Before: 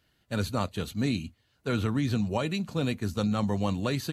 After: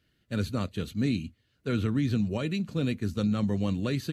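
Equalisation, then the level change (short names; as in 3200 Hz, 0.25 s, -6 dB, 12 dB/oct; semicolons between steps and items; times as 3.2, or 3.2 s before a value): low shelf 160 Hz -5 dB; bell 850 Hz -14 dB 1.2 oct; high shelf 3100 Hz -10.5 dB; +4.0 dB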